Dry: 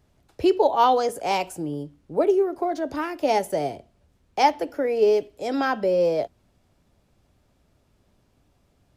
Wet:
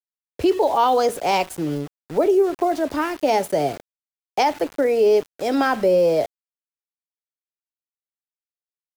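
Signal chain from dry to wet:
brickwall limiter −15 dBFS, peak gain reduction 8.5 dB
centre clipping without the shift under −38 dBFS
level +5 dB

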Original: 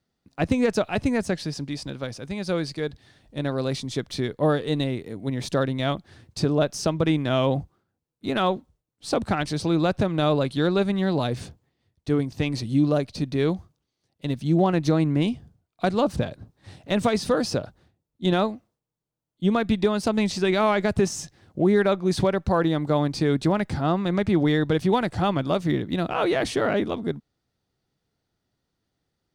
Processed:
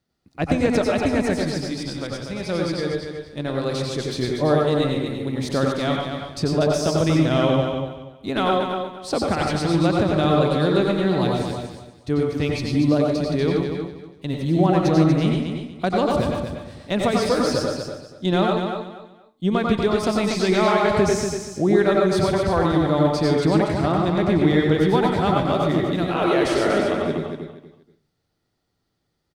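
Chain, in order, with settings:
repeating echo 239 ms, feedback 25%, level −6.5 dB
convolution reverb RT60 0.30 s, pre-delay 83 ms, DRR 0.5 dB

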